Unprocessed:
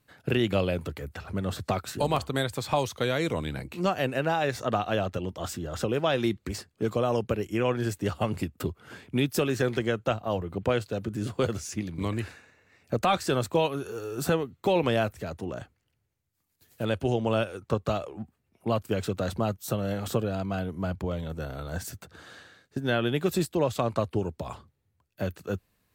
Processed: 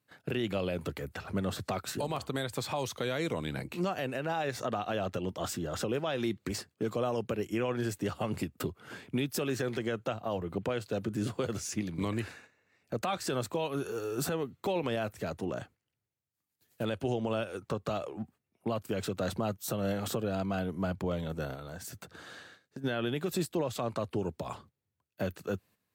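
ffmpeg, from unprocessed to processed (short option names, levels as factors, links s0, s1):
-filter_complex "[0:a]asettb=1/sr,asplit=3[s0][s1][s2];[s0]atrim=end=21.544[s3];[s1]atrim=start=21.54:end=22.84,asetpts=PTS-STARTPTS,afade=t=in:d=0.004:c=qsin,afade=t=out:st=1.296:d=0.004:c=qsin,acompressor=threshold=0.0112:ratio=4:attack=3.2:release=140:knee=1:detection=peak[s4];[s2]atrim=start=22.836[s5];[s3][s4]acrossfade=d=0.004:c1=hsin:c2=qsin[s6];[s6][s5]acrossfade=d=0.004:c1=qsin:c2=hsin,highpass=110,agate=range=0.355:threshold=0.002:ratio=16:detection=peak,alimiter=limit=0.075:level=0:latency=1:release=133"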